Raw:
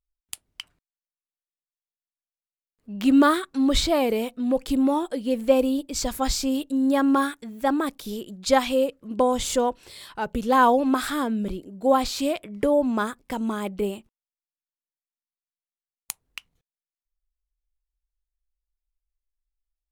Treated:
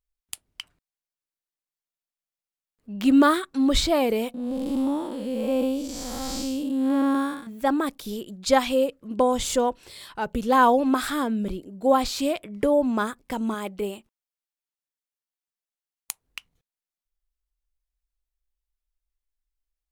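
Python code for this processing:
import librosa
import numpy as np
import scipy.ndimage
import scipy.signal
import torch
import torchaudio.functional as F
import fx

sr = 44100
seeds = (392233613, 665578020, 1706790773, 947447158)

y = fx.spec_blur(x, sr, span_ms=250.0, at=(4.34, 7.47))
y = fx.low_shelf(y, sr, hz=290.0, db=-7.0, at=(13.54, 16.24))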